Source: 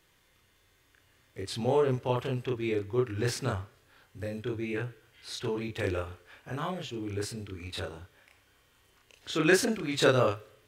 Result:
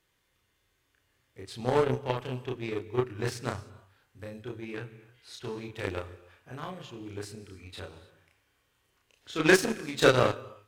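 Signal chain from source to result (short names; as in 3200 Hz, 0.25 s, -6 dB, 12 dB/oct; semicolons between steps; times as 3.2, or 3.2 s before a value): non-linear reverb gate 0.33 s flat, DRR 11.5 dB; added harmonics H 7 -20 dB, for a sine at -9.5 dBFS; gain +3 dB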